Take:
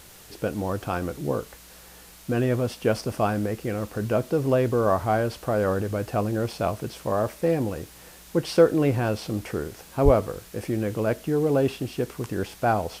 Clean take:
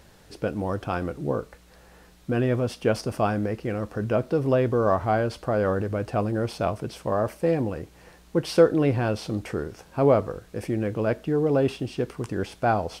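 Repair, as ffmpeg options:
-filter_complex "[0:a]adeclick=t=4,asplit=3[a][b][c];[a]afade=t=out:st=10.04:d=0.02[d];[b]highpass=f=140:w=0.5412,highpass=f=140:w=1.3066,afade=t=in:st=10.04:d=0.02,afade=t=out:st=10.16:d=0.02[e];[c]afade=t=in:st=10.16:d=0.02[f];[d][e][f]amix=inputs=3:normalize=0,afftdn=nr=6:nf=-48"

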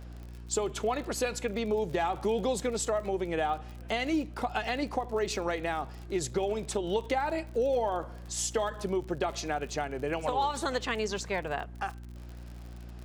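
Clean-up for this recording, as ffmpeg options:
-af "adeclick=t=4,bandreject=f=59.5:t=h:w=4,bandreject=f=119:t=h:w=4,bandreject=f=178.5:t=h:w=4,bandreject=f=238:t=h:w=4,bandreject=f=297.5:t=h:w=4,bandreject=f=357:t=h:w=4"

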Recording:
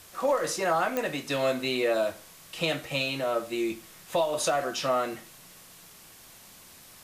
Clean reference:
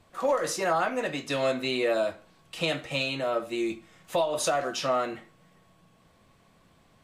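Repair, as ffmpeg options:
-af "adeclick=t=4,afftdn=nr=10:nf=-51"

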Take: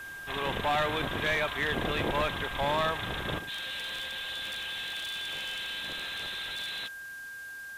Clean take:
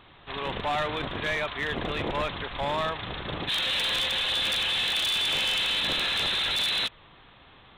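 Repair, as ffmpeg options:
-af "bandreject=f=1.6k:w=30,afwtdn=0.002,asetnsamples=n=441:p=0,asendcmd='3.39 volume volume 11dB',volume=0dB"

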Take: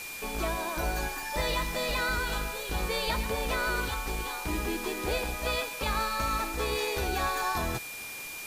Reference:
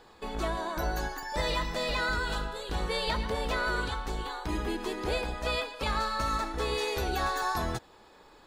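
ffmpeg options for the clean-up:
-af "bandreject=f=2.4k:w=30,afftdn=nr=14:nf=-40"

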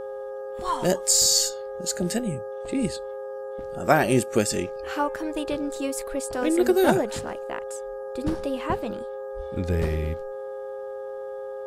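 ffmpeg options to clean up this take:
-af "bandreject=f=411.3:t=h:w=4,bandreject=f=822.6:t=h:w=4,bandreject=f=1.2339k:t=h:w=4,bandreject=f=1.6452k:t=h:w=4,bandreject=f=530:w=30"

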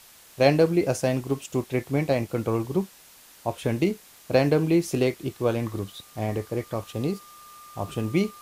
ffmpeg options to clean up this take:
-af "adeclick=t=4,bandreject=f=1.2k:w=30,afwtdn=0.0032"

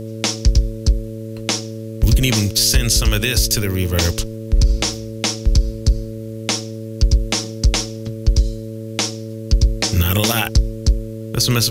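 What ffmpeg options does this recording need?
-af "bandreject=f=110.9:t=h:w=4,bandreject=f=221.8:t=h:w=4,bandreject=f=332.7:t=h:w=4,bandreject=f=443.6:t=h:w=4,bandreject=f=554.5:t=h:w=4,agate=range=-21dB:threshold=-21dB"

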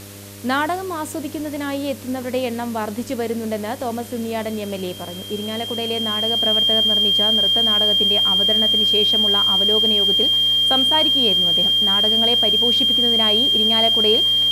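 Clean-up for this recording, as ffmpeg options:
-af "bandreject=f=100:t=h:w=4,bandreject=f=200:t=h:w=4,bandreject=f=300:t=h:w=4,bandreject=f=400:t=h:w=4,bandreject=f=500:t=h:w=4,bandreject=f=600:t=h:w=4,bandreject=f=3.2k:w=30,afwtdn=0.01"

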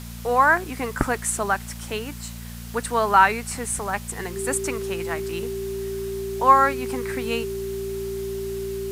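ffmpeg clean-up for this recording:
-af "bandreject=f=58:t=h:w=4,bandreject=f=116:t=h:w=4,bandreject=f=174:t=h:w=4,bandreject=f=232:t=h:w=4,bandreject=f=390:w=30,afwtdn=0.0071"

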